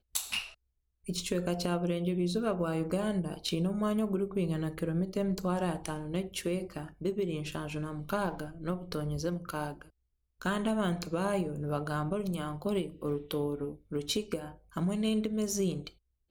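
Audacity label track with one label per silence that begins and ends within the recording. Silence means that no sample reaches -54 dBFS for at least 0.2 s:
0.540000	1.040000	silence
9.900000	10.410000	silence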